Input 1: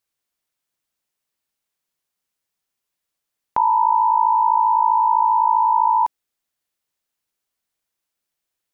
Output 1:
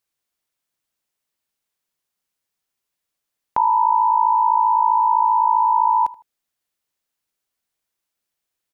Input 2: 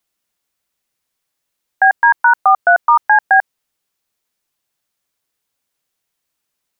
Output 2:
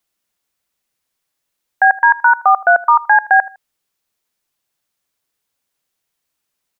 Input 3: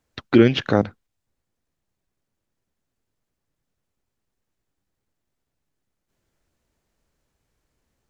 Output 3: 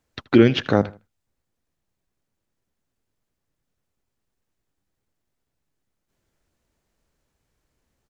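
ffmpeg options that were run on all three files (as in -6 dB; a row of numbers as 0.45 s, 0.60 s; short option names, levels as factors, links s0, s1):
-filter_complex "[0:a]asplit=2[s0][s1];[s1]adelay=79,lowpass=f=4000:p=1,volume=0.1,asplit=2[s2][s3];[s3]adelay=79,lowpass=f=4000:p=1,volume=0.3[s4];[s0][s2][s4]amix=inputs=3:normalize=0"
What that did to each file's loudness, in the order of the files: 0.0 LU, 0.0 LU, 0.0 LU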